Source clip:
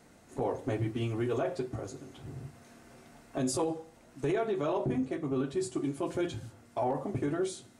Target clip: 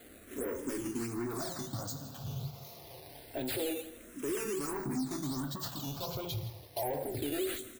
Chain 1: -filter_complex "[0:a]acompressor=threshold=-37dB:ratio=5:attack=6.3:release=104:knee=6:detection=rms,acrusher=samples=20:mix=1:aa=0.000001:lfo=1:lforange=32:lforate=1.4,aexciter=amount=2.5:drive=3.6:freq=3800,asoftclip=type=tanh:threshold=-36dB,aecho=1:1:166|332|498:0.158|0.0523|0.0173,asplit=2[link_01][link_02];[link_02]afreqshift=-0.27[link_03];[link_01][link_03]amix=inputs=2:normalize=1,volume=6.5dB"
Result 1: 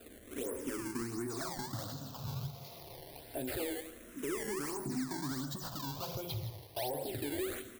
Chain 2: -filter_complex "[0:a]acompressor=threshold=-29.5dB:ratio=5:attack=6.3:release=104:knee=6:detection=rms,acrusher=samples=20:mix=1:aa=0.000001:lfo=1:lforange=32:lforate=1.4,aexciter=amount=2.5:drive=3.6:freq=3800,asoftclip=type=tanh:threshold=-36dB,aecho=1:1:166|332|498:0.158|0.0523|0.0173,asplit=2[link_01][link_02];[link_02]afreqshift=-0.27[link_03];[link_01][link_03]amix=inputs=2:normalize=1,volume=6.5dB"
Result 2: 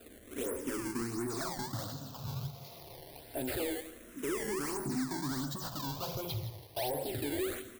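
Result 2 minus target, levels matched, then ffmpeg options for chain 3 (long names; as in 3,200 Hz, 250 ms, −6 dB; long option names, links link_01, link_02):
sample-and-hold swept by an LFO: distortion +7 dB
-filter_complex "[0:a]acompressor=threshold=-29.5dB:ratio=5:attack=6.3:release=104:knee=6:detection=rms,acrusher=samples=8:mix=1:aa=0.000001:lfo=1:lforange=12.8:lforate=1.4,aexciter=amount=2.5:drive=3.6:freq=3800,asoftclip=type=tanh:threshold=-36dB,aecho=1:1:166|332|498:0.158|0.0523|0.0173,asplit=2[link_01][link_02];[link_02]afreqshift=-0.27[link_03];[link_01][link_03]amix=inputs=2:normalize=1,volume=6.5dB"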